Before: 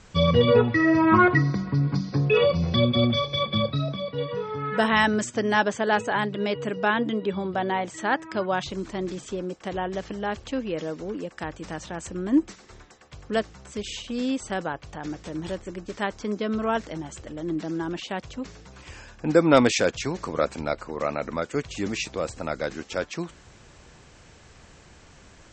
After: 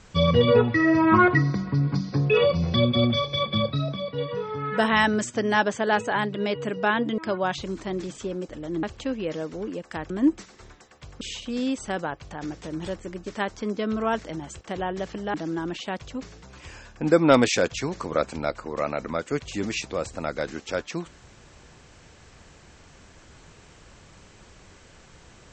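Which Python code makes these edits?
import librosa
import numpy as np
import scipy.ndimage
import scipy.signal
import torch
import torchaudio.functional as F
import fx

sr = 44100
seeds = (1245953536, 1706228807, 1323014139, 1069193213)

y = fx.edit(x, sr, fx.cut(start_s=7.18, length_s=1.08),
    fx.swap(start_s=9.57, length_s=0.73, other_s=17.23, other_length_s=0.34),
    fx.cut(start_s=11.57, length_s=0.63),
    fx.cut(start_s=13.31, length_s=0.52), tone=tone)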